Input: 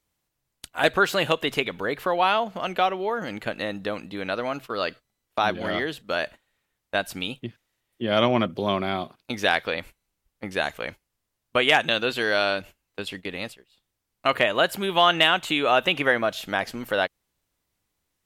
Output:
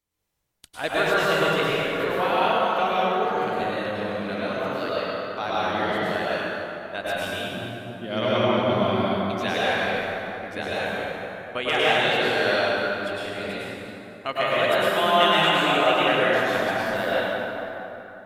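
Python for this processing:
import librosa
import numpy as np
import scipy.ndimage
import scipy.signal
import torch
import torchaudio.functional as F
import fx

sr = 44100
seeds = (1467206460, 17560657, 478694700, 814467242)

y = fx.rev_plate(x, sr, seeds[0], rt60_s=3.5, hf_ratio=0.55, predelay_ms=90, drr_db=-9.0)
y = y * 10.0 ** (-8.0 / 20.0)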